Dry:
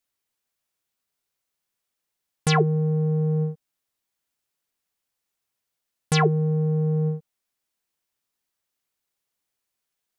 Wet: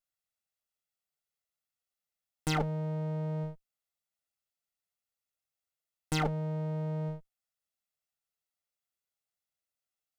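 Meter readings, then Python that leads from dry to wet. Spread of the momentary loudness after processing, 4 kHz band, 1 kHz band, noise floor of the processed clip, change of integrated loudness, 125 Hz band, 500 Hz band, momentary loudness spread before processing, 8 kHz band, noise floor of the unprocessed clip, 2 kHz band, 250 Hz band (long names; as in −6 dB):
8 LU, −10.0 dB, −9.0 dB, below −85 dBFS, −11.0 dB, −11.5 dB, −12.0 dB, 8 LU, −9.5 dB, −83 dBFS, −10.0 dB, −10.5 dB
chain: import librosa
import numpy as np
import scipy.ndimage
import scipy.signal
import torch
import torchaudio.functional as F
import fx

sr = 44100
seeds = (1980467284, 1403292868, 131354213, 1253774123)

y = fx.lower_of_two(x, sr, delay_ms=1.5)
y = F.gain(torch.from_numpy(y), -9.0).numpy()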